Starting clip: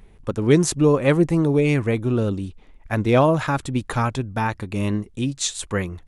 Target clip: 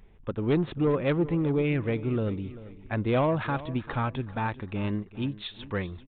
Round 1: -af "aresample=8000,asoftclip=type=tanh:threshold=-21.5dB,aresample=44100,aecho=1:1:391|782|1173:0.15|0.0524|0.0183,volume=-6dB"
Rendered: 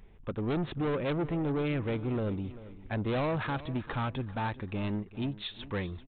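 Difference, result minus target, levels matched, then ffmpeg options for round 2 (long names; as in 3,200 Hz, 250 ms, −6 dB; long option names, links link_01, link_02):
soft clipping: distortion +9 dB
-af "aresample=8000,asoftclip=type=tanh:threshold=-11.5dB,aresample=44100,aecho=1:1:391|782|1173:0.15|0.0524|0.0183,volume=-6dB"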